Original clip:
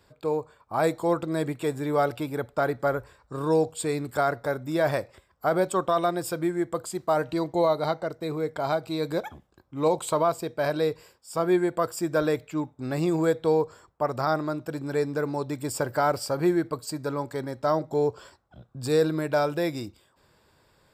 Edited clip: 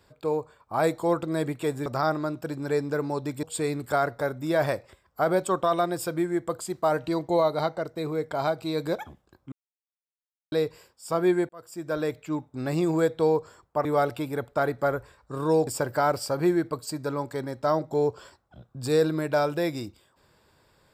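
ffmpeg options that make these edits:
-filter_complex "[0:a]asplit=8[a][b][c][d][e][f][g][h];[a]atrim=end=1.862[i];[b]atrim=start=14.098:end=15.672[j];[c]atrim=start=3.678:end=9.77,asetpts=PTS-STARTPTS,afade=t=out:st=6.088:d=0.004:c=hsin[k];[d]atrim=start=9.77:end=10.77,asetpts=PTS-STARTPTS,volume=0[l];[e]atrim=start=10.77:end=11.74,asetpts=PTS-STARTPTS,afade=t=in:d=0.004:c=hsin,afade=t=out:st=0.966:d=0.004:c=hsin[m];[f]atrim=start=11.74:end=14.102,asetpts=PTS-STARTPTS,afade=t=in:d=1.15:c=qsin[n];[g]atrim=start=1.858:end=3.682[o];[h]atrim=start=15.668[p];[i][j]acrossfade=d=0.004:c1=hsin:c2=hsin[q];[k][l][m][n]concat=n=4:v=0:a=1[r];[q][r]acrossfade=d=0.004:c1=hsin:c2=hsin[s];[s][o]acrossfade=d=0.004:c1=hsin:c2=hsin[t];[t][p]acrossfade=d=0.004:c1=hsin:c2=hsin"

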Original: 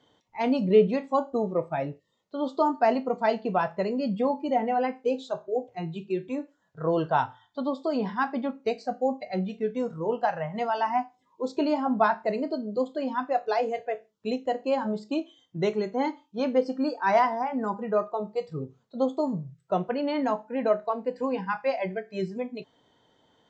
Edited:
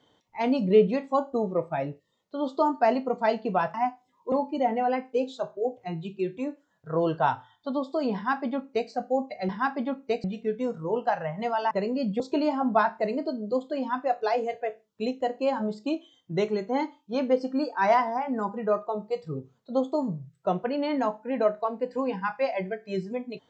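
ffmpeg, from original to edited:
-filter_complex "[0:a]asplit=7[a][b][c][d][e][f][g];[a]atrim=end=3.742[h];[b]atrim=start=10.868:end=11.452[i];[c]atrim=start=4.228:end=9.402[j];[d]atrim=start=8.058:end=8.812[k];[e]atrim=start=9.398:end=10.872[l];[f]atrim=start=3.738:end=4.232[m];[g]atrim=start=11.448[n];[h][i]acrossfade=d=0.004:c1=hsin:c2=hsin[o];[o][j]acrossfade=d=0.004:c1=hsin:c2=hsin[p];[p][k]acrossfade=d=0.004:c1=hsin:c2=hsin[q];[q][l]acrossfade=d=0.004:c1=hsin:c2=hsin[r];[r][m]acrossfade=d=0.004:c1=hsin:c2=hsin[s];[s][n]acrossfade=d=0.004:c1=hsin:c2=hsin"

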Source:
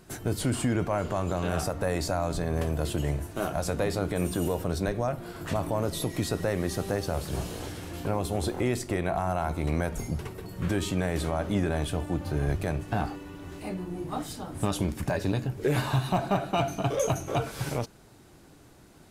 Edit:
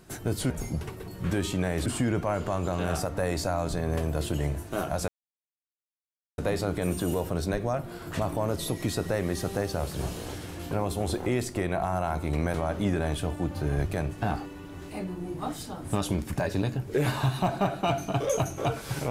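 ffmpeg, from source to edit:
-filter_complex "[0:a]asplit=5[a][b][c][d][e];[a]atrim=end=0.502[f];[b]atrim=start=9.878:end=11.242[g];[c]atrim=start=0.498:end=3.72,asetpts=PTS-STARTPTS,afade=t=out:st=3.218:d=0.004:c=hsin,apad=pad_dur=1.3[h];[d]atrim=start=3.72:end=9.882,asetpts=PTS-STARTPTS,afade=t=in:d=0.004:c=hsin[i];[e]atrim=start=11.238[j];[f][g]acrossfade=d=0.004:c1=hsin:c2=hsin[k];[h][i]concat=n=2:v=0:a=1[l];[k][l]acrossfade=d=0.004:c1=hsin:c2=hsin[m];[m][j]acrossfade=d=0.004:c1=hsin:c2=hsin"

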